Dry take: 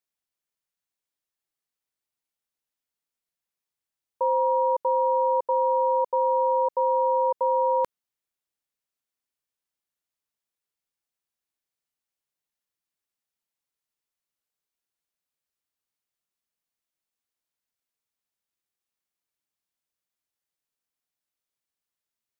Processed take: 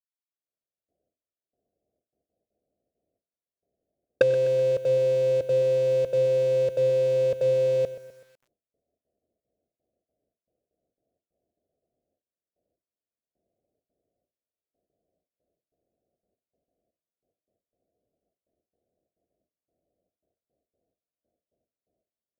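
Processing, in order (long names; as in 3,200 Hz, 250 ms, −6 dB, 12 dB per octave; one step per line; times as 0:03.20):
sub-octave generator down 2 octaves, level +4 dB
camcorder AGC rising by 58 dB per second
high-pass filter 520 Hz 6 dB per octave
noise gate with hold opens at −48 dBFS
Butterworth low-pass 700 Hz 96 dB per octave
leveller curve on the samples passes 2
soft clipping −10 dBFS, distortion −22 dB
single-tap delay 95 ms −23 dB
feedback echo at a low word length 126 ms, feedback 55%, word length 8 bits, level −14.5 dB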